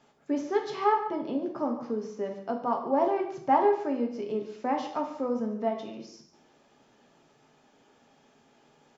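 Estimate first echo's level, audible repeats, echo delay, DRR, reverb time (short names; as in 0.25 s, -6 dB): -15.5 dB, 1, 0.142 s, 1.5 dB, 0.60 s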